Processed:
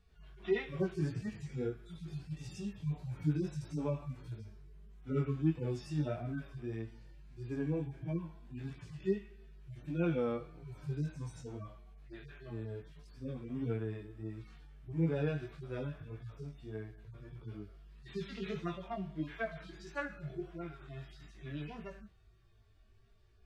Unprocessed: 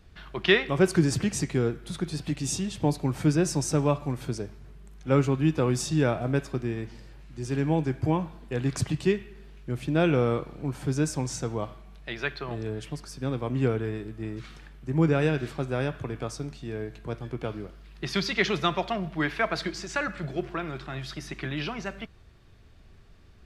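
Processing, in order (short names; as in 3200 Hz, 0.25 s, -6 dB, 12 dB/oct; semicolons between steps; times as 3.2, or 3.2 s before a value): median-filter separation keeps harmonic; chorus 1.6 Hz, delay 17.5 ms, depth 3.3 ms; gain -6.5 dB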